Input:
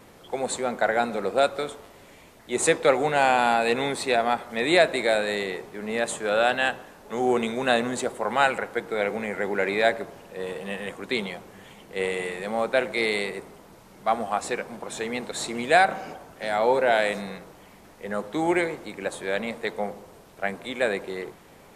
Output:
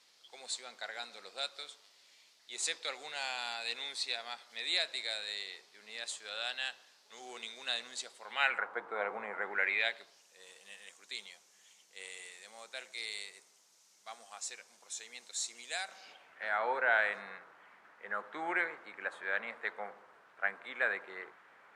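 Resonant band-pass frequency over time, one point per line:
resonant band-pass, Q 2.4
0:08.22 4,700 Hz
0:08.68 1,100 Hz
0:09.36 1,100 Hz
0:10.24 6,200 Hz
0:15.88 6,200 Hz
0:16.45 1,500 Hz

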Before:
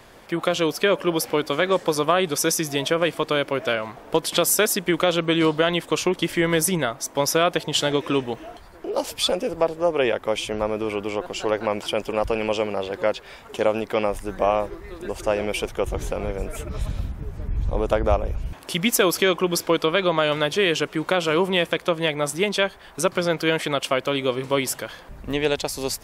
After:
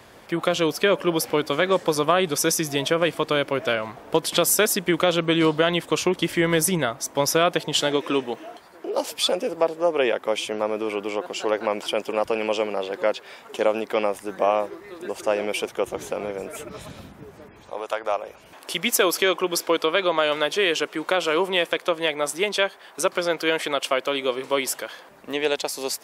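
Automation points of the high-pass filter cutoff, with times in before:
0:07.23 59 Hz
0:08.02 230 Hz
0:17.27 230 Hz
0:17.91 860 Hz
0:18.71 330 Hz

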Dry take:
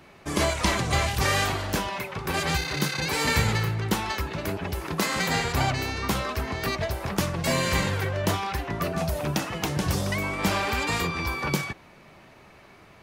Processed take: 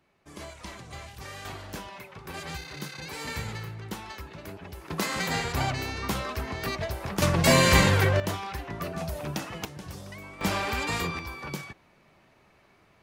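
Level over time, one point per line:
−18 dB
from 0:01.45 −11.5 dB
from 0:04.90 −3.5 dB
from 0:07.22 +5.5 dB
from 0:08.20 −6 dB
from 0:09.65 −15 dB
from 0:10.41 −3 dB
from 0:11.19 −9.5 dB

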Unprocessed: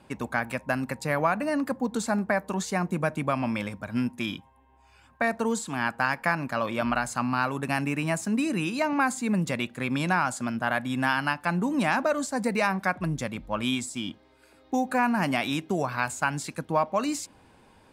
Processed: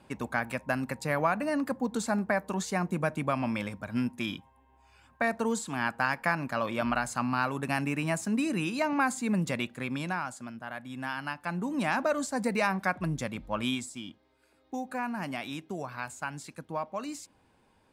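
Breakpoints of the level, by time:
0:09.61 −2.5 dB
0:10.65 −13.5 dB
0:12.10 −2.5 dB
0:13.65 −2.5 dB
0:14.09 −9.5 dB

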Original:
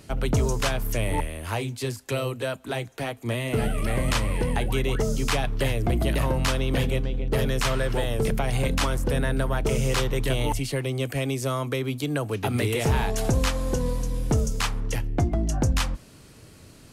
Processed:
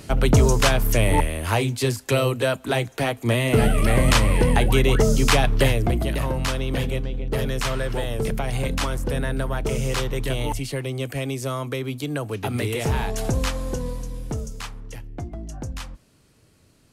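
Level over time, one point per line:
0:05.62 +7 dB
0:06.06 −0.5 dB
0:13.54 −0.5 dB
0:14.84 −9.5 dB

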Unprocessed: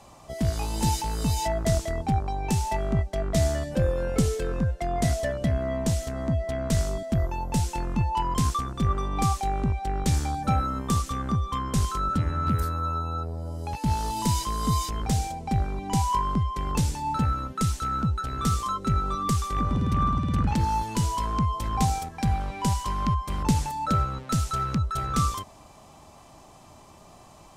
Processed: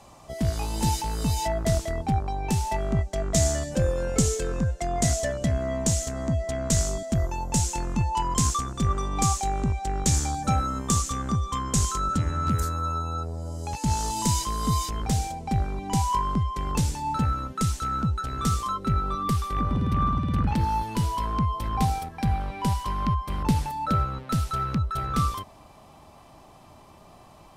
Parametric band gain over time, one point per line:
parametric band 7,000 Hz 0.76 octaves
0:02.65 0 dB
0:03.32 +12 dB
0:14.00 +12 dB
0:14.58 +1.5 dB
0:18.50 +1.5 dB
0:18.90 −8 dB

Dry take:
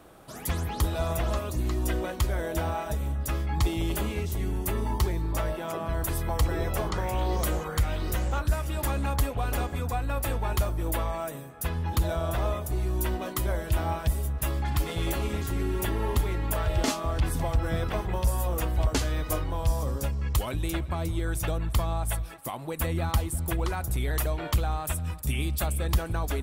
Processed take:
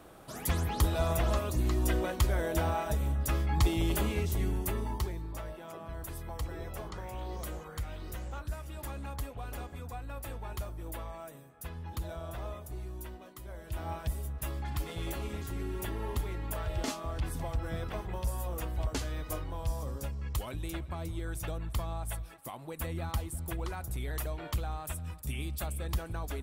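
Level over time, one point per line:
0:04.42 −1 dB
0:05.39 −12 dB
0:12.78 −12 dB
0:13.38 −19 dB
0:13.93 −8 dB

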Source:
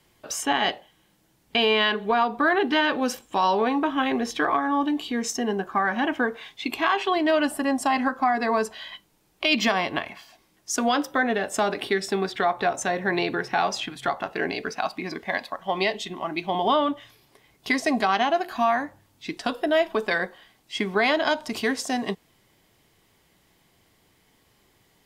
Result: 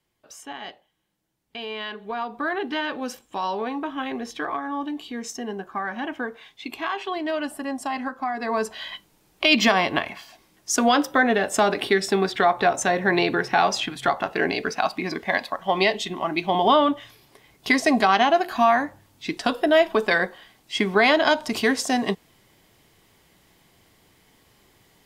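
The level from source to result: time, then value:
0:01.56 −13.5 dB
0:02.44 −5.5 dB
0:08.34 −5.5 dB
0:08.83 +4 dB

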